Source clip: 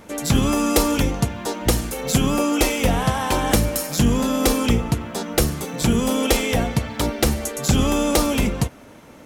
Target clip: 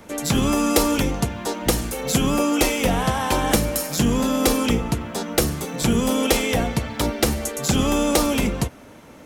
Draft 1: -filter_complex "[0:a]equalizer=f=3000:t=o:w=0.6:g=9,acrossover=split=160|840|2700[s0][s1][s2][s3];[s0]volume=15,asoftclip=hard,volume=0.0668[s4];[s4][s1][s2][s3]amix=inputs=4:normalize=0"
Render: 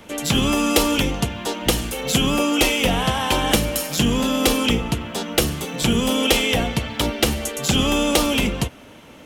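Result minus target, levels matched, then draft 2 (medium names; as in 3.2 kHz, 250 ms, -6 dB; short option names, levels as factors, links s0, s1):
4 kHz band +5.0 dB
-filter_complex "[0:a]acrossover=split=160|840|2700[s0][s1][s2][s3];[s0]volume=15,asoftclip=hard,volume=0.0668[s4];[s4][s1][s2][s3]amix=inputs=4:normalize=0"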